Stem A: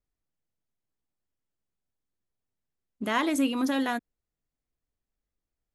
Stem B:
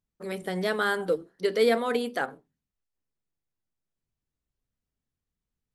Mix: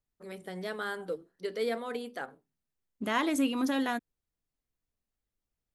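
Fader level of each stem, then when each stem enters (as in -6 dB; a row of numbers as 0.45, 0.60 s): -2.5, -9.5 dB; 0.00, 0.00 s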